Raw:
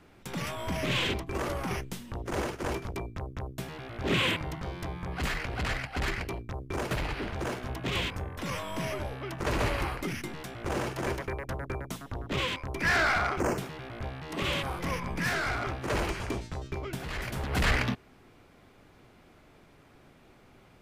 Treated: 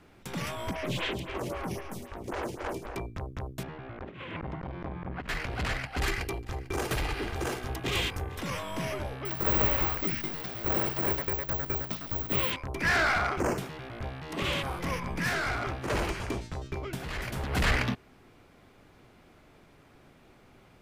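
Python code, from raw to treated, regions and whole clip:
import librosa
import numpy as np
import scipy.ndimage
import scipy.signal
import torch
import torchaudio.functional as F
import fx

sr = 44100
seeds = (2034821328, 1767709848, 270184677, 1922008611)

y = fx.chain(x, sr, fx.echo_split(split_hz=2600.0, low_ms=251, high_ms=108, feedback_pct=52, wet_db=-9.0),
    fx.stagger_phaser(hz=3.8), at=(0.71, 2.96))
y = fx.chain(y, sr, fx.lowpass(hz=2000.0, slope=12),
    fx.over_compress(threshold_db=-34.0, ratio=-0.5),
    fx.transformer_sat(knee_hz=360.0), at=(3.63, 5.29))
y = fx.chain(y, sr, fx.high_shelf(hz=5800.0, db=8.0),
    fx.comb(ms=2.5, depth=0.34),
    fx.echo_single(ms=447, db=-19.5), at=(5.98, 8.41))
y = fx.chain(y, sr, fx.delta_mod(bps=32000, step_db=-39.5),
    fx.resample_bad(factor=2, down='none', up='zero_stuff'), at=(9.25, 12.52))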